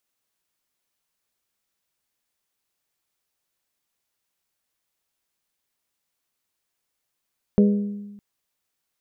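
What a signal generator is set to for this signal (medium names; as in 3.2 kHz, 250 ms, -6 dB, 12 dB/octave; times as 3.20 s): glass hit bell, length 0.61 s, lowest mode 204 Hz, modes 4, decay 1.20 s, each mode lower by 6.5 dB, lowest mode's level -11.5 dB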